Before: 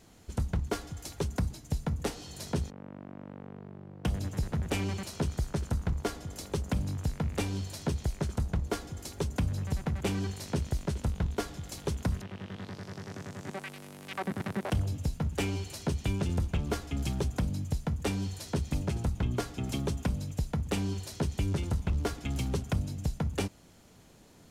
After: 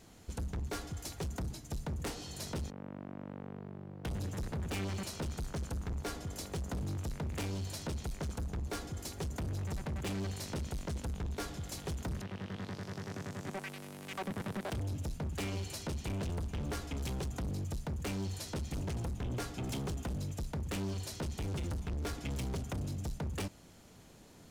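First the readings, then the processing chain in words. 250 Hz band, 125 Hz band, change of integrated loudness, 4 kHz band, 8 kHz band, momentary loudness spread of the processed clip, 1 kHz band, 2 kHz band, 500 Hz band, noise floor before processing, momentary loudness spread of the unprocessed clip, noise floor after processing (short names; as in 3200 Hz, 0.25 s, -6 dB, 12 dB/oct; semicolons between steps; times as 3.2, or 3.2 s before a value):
-6.0 dB, -6.0 dB, -5.5 dB, -3.5 dB, -2.5 dB, 5 LU, -4.5 dB, -4.0 dB, -5.5 dB, -55 dBFS, 10 LU, -55 dBFS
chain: overloaded stage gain 34.5 dB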